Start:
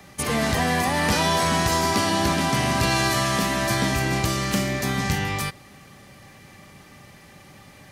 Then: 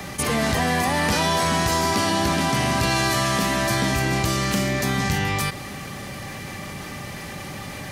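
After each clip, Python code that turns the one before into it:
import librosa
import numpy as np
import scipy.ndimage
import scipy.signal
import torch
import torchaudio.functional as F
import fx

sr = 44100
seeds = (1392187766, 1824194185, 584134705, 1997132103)

y = fx.env_flatten(x, sr, amount_pct=50)
y = y * librosa.db_to_amplitude(-1.0)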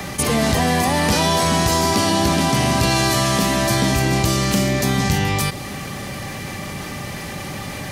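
y = fx.dynamic_eq(x, sr, hz=1600.0, q=0.97, threshold_db=-38.0, ratio=4.0, max_db=-5)
y = y * librosa.db_to_amplitude(5.0)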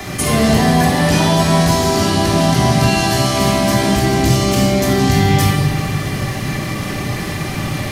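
y = fx.rider(x, sr, range_db=3, speed_s=0.5)
y = fx.room_shoebox(y, sr, seeds[0], volume_m3=1800.0, walls='mixed', distance_m=3.2)
y = y * librosa.db_to_amplitude(-2.5)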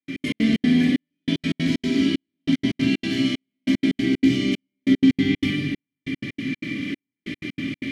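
y = fx.vowel_filter(x, sr, vowel='i')
y = fx.step_gate(y, sr, bpm=188, pattern='.x.x.xx.xxxx...', floor_db=-60.0, edge_ms=4.5)
y = y * librosa.db_to_amplitude(6.0)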